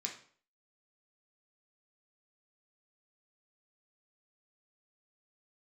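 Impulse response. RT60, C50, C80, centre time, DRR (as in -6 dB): 0.50 s, 8.0 dB, 13.0 dB, 19 ms, -0.5 dB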